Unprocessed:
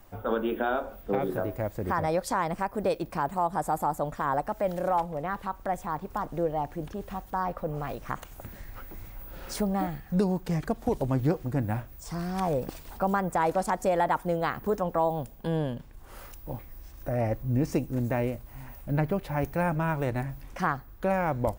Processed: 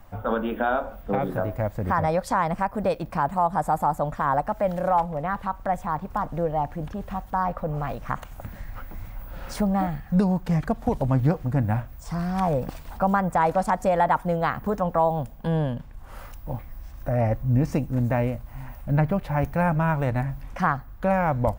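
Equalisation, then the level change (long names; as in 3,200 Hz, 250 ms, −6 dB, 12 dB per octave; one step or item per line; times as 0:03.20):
parametric band 370 Hz −10.5 dB 0.71 octaves
high-shelf EQ 2,600 Hz −10 dB
+7.0 dB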